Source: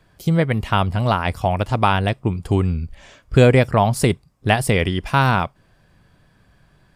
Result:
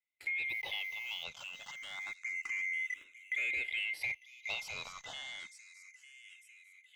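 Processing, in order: band-swap scrambler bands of 2000 Hz; gate -42 dBFS, range -24 dB; low shelf 380 Hz -7.5 dB; sample leveller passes 3; limiter -18 dBFS, peak gain reduction 18 dB; compressor 12:1, threshold -24 dBFS, peak gain reduction 4.5 dB; 4.01–5.06 sample leveller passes 1; air absorption 79 m; 0.49–1.24 requantised 8-bit, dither none; thin delay 0.9 s, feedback 47%, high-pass 4000 Hz, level -9 dB; endless phaser +0.29 Hz; gain -7.5 dB

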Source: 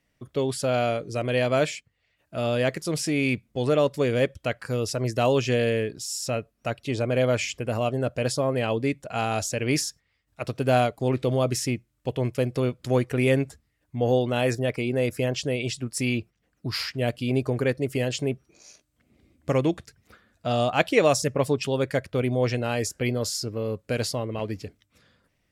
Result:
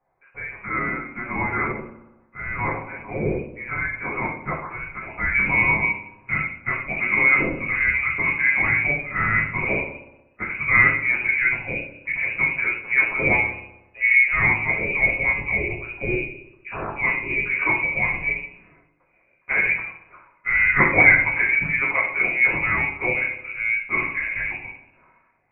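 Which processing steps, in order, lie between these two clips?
HPF 1200 Hz 12 dB/oct, from 5.34 s 510 Hz; thin delay 61 ms, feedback 67%, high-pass 2100 Hz, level -8 dB; shoebox room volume 51 m³, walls mixed, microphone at 1.9 m; inverted band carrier 2700 Hz; gain -2 dB

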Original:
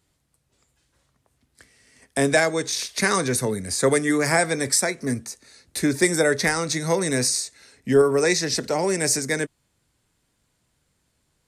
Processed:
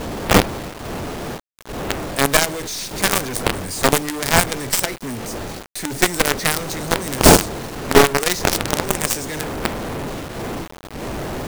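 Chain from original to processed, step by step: half-wave gain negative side -7 dB; wind noise 520 Hz -27 dBFS; companded quantiser 2-bit; gain -1 dB

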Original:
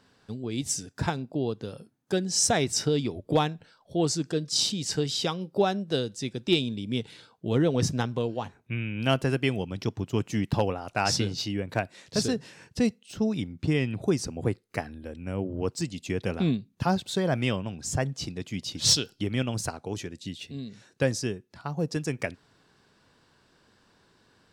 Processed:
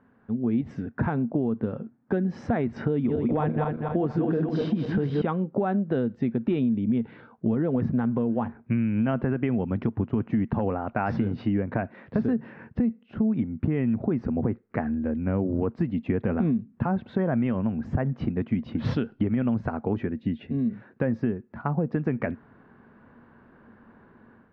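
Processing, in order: 2.92–5.22 regenerating reverse delay 0.121 s, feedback 62%, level -5 dB; LPF 1800 Hz 24 dB/oct; bell 230 Hz +12 dB 0.27 oct; AGC gain up to 8.5 dB; limiter -11 dBFS, peak gain reduction 9 dB; compressor, threshold -21 dBFS, peak gain reduction 7.5 dB

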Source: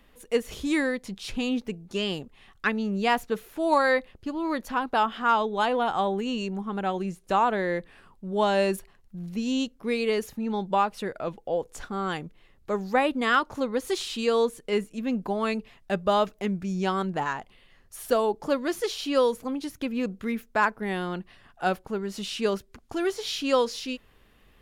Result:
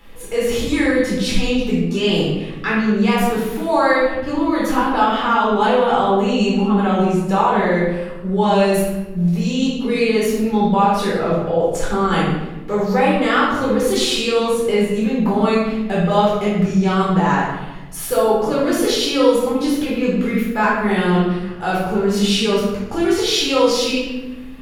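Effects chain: in parallel at +2 dB: negative-ratio compressor -32 dBFS, ratio -1; on the sum: shoebox room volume 540 m³, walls mixed, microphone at 4.1 m; gain -4.5 dB

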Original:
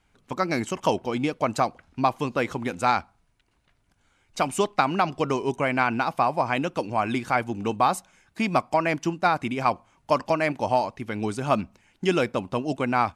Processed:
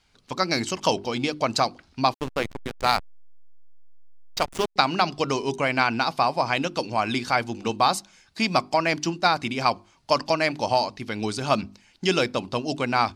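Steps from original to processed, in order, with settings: bell 4600 Hz +14 dB 0.95 oct; notches 50/100/150/200/250/300/350/400 Hz; 2.14–4.76 backlash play -18.5 dBFS

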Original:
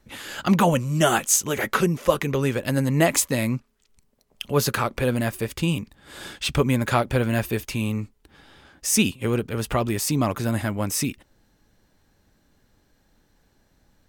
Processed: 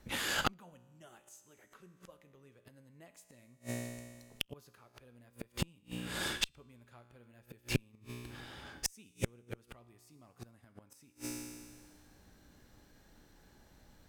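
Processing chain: resonator 60 Hz, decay 1.6 s, harmonics all, mix 70%; flipped gate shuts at -27 dBFS, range -39 dB; added harmonics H 6 -19 dB, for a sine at -24 dBFS; gain +10 dB

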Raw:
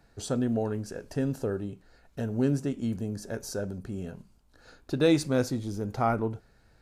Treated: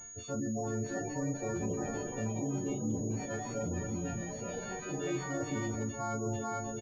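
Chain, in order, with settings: frequency quantiser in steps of 4 st; on a send: split-band echo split 580 Hz, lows 0.257 s, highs 0.438 s, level -12 dB; on the sum: reverse; compressor 12:1, threshold -37 dBFS, peak gain reduction 20 dB; reverse; sample leveller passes 2; air absorption 130 m; echo 0.162 s -13.5 dB; spectral gate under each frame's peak -20 dB strong; echoes that change speed 0.729 s, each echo +5 st, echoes 2, each echo -6 dB; doubler 37 ms -12 dB; pulse-width modulation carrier 6700 Hz

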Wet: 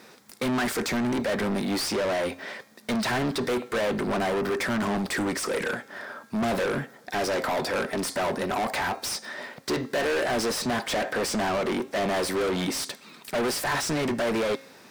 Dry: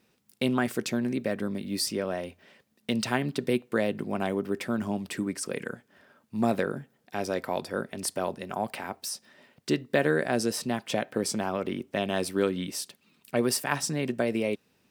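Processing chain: bell 2800 Hz -10 dB 0.44 oct; overdrive pedal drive 39 dB, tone 4100 Hz, clips at -9.5 dBFS; de-hum 269.7 Hz, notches 33; gain -9 dB

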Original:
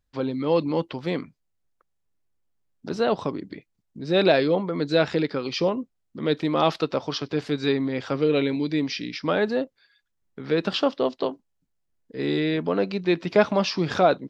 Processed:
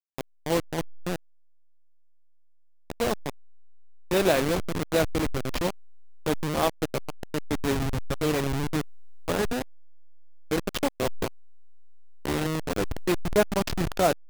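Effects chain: level-crossing sampler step -17.5 dBFS; gain -3 dB

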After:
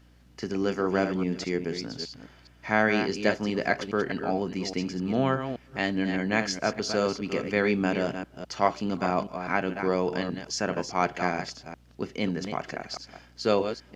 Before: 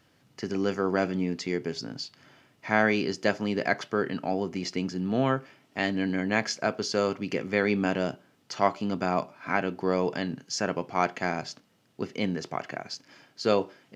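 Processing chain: reverse delay 0.206 s, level -8 dB; hum 60 Hz, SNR 29 dB

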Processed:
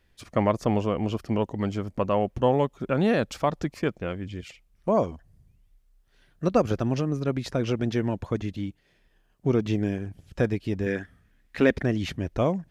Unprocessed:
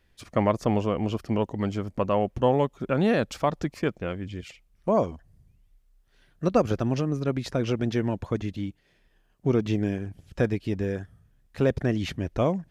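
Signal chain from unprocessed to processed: 10.86–11.83 graphic EQ 125/250/2000/4000 Hz -9/+7/+11/+3 dB

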